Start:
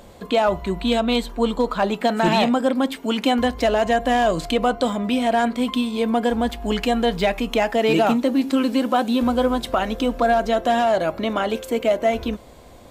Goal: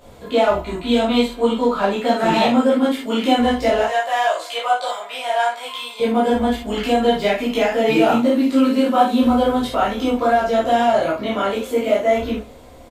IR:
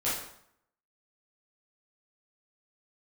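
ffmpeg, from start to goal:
-filter_complex "[0:a]asettb=1/sr,asplit=3[a][b][c];[a]atrim=end=3.814[d];[b]atrim=start=3.81:end=6,asetpts=PTS-STARTPTS,afade=t=in:d=0.004:c=qsin,afade=t=out:st=2.186:d=0.004:c=qsin,highpass=f=640:w=0.5412,highpass=f=640:w=1.3066[e];[c]atrim=start=5.996[f];[d][e]acrossfade=d=0.004:c1=hsin:c2=qsin[g];[g][f]acrossfade=d=0.004:c1=qsin:c2=hsin,aecho=1:1:97|194|291:0.1|0.04|0.016[h];[1:a]atrim=start_sample=2205,atrim=end_sample=4410[i];[h][i]afir=irnorm=-1:irlink=0,volume=-5.5dB"

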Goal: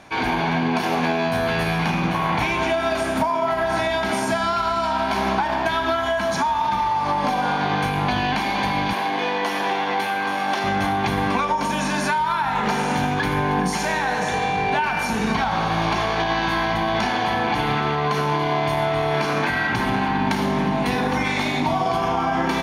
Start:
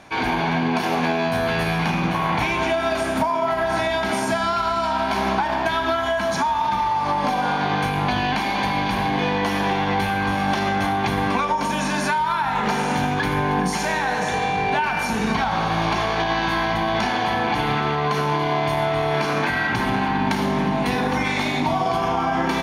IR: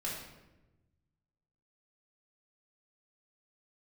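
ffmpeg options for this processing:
-filter_complex "[0:a]asettb=1/sr,asplit=3[a][b][c];[a]atrim=end=8.934[d];[b]atrim=start=8.93:end=10.64,asetpts=PTS-STARTPTS,afade=t=in:d=0.004:c=qsin,afade=t=out:st=1.706:d=0.004:c=qsin,highpass=330[e];[c]atrim=start=10.636[f];[d][e]acrossfade=d=0.004:c1=hsin:c2=qsin[g];[g][f]acrossfade=d=0.004:c1=qsin:c2=hsin"

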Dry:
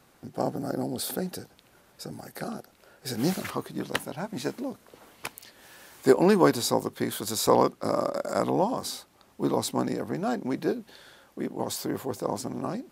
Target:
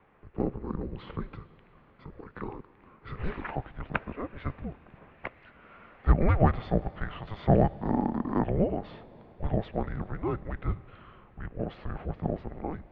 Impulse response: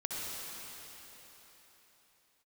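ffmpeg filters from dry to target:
-filter_complex "[0:a]asplit=2[a][b];[1:a]atrim=start_sample=2205,highshelf=f=5.2k:g=11[c];[b][c]afir=irnorm=-1:irlink=0,volume=-22.5dB[d];[a][d]amix=inputs=2:normalize=0,highpass=f=350:t=q:w=0.5412,highpass=f=350:t=q:w=1.307,lowpass=f=2.8k:t=q:w=0.5176,lowpass=f=2.8k:t=q:w=0.7071,lowpass=f=2.8k:t=q:w=1.932,afreqshift=-340"

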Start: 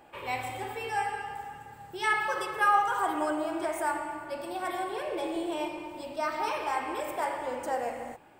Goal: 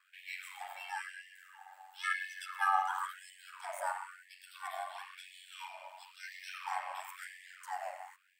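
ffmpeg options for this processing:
-af "aeval=exprs='val(0)*sin(2*PI*46*n/s)':c=same,afftfilt=real='re*gte(b*sr/1024,550*pow(1700/550,0.5+0.5*sin(2*PI*0.98*pts/sr)))':imag='im*gte(b*sr/1024,550*pow(1700/550,0.5+0.5*sin(2*PI*0.98*pts/sr)))':win_size=1024:overlap=0.75,volume=-3.5dB"

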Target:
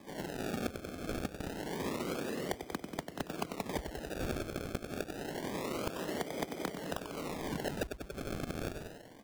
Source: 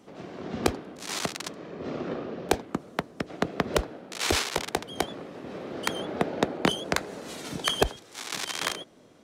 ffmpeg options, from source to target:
-filter_complex "[0:a]equalizer=f=11k:w=0.37:g=-10.5,asplit=2[a][b];[b]adelay=93,lowpass=f=1.7k:p=1,volume=-8.5dB,asplit=2[c][d];[d]adelay=93,lowpass=f=1.7k:p=1,volume=0.51,asplit=2[e][f];[f]adelay=93,lowpass=f=1.7k:p=1,volume=0.51,asplit=2[g][h];[h]adelay=93,lowpass=f=1.7k:p=1,volume=0.51,asplit=2[i][j];[j]adelay=93,lowpass=f=1.7k:p=1,volume=0.51,asplit=2[k][l];[l]adelay=93,lowpass=f=1.7k:p=1,volume=0.51[m];[a][c][e][g][i][k][m]amix=inputs=7:normalize=0,acrusher=samples=31:mix=1:aa=0.000001:lfo=1:lforange=31:lforate=0.27,acompressor=threshold=-34dB:ratio=12,asoftclip=type=hard:threshold=-25.5dB,volume=1dB"

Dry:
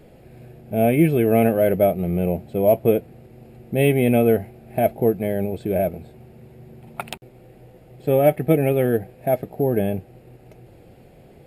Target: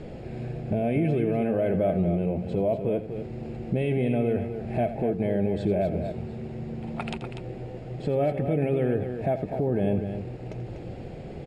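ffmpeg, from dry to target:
-af "lowpass=f=7k:w=0.5412,lowpass=f=7k:w=1.3066,lowshelf=f=470:g=4,acompressor=threshold=-27dB:ratio=2.5,alimiter=limit=-23.5dB:level=0:latency=1:release=24,aecho=1:1:84|244:0.224|0.376,volume=6dB"

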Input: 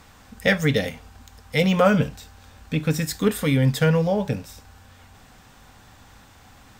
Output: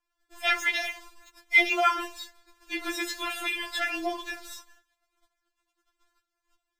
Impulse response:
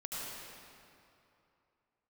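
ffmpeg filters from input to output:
-filter_complex "[0:a]aeval=exprs='val(0)+0.00141*(sin(2*PI*60*n/s)+sin(2*PI*2*60*n/s)/2+sin(2*PI*3*60*n/s)/3+sin(2*PI*4*60*n/s)/4+sin(2*PI*5*60*n/s)/5)':c=same,acrossover=split=4600[a][b];[b]acompressor=threshold=-43dB:ratio=4:attack=1:release=60[c];[a][c]amix=inputs=2:normalize=0,agate=range=-36dB:threshold=-44dB:ratio=16:detection=peak,afftfilt=real='re*4*eq(mod(b,16),0)':imag='im*4*eq(mod(b,16),0)':win_size=2048:overlap=0.75,volume=5.5dB"

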